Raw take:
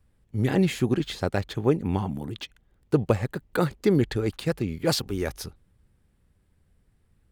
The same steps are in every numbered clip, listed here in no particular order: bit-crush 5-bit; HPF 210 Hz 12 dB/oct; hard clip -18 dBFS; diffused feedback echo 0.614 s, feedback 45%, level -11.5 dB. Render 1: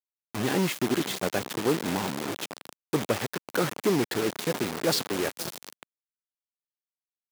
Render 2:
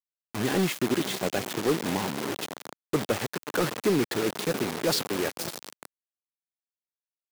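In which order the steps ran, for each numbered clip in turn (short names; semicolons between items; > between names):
hard clip > diffused feedback echo > bit-crush > HPF; diffused feedback echo > bit-crush > HPF > hard clip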